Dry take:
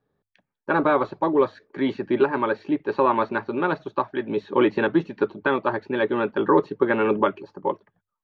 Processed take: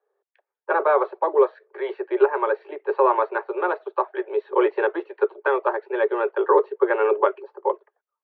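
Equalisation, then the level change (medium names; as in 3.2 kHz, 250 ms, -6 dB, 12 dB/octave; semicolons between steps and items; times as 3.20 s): steep high-pass 370 Hz 96 dB/octave; low-pass 1.5 kHz 6 dB/octave; distance through air 240 m; +4.0 dB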